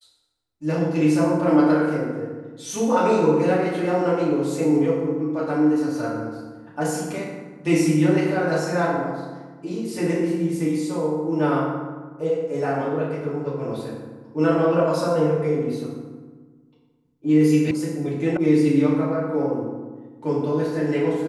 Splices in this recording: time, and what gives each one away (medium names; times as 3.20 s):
17.71 s: sound stops dead
18.37 s: sound stops dead